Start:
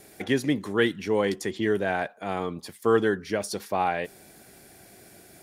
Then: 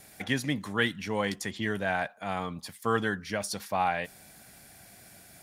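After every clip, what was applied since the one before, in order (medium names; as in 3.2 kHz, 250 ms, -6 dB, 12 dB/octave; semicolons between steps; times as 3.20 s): peaking EQ 380 Hz -13 dB 0.82 oct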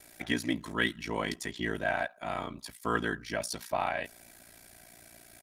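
comb 3.1 ms, depth 56%; ring modulator 29 Hz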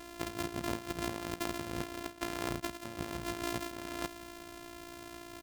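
sorted samples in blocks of 128 samples; compressor with a negative ratio -40 dBFS, ratio -1; trim +1 dB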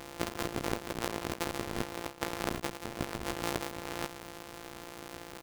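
cycle switcher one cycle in 2, muted; trim +5 dB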